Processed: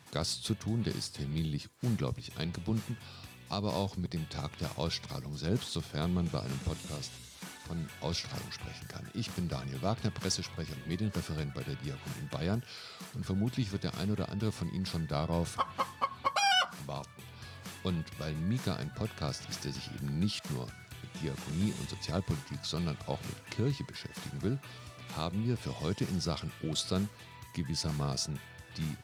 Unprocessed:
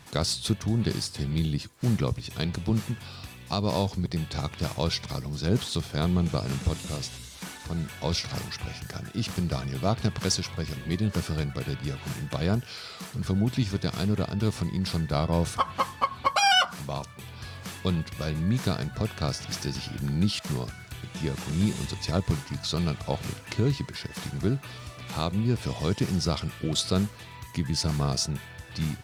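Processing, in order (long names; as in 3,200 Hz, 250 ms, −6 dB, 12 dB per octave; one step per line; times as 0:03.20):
high-pass filter 78 Hz
level −6.5 dB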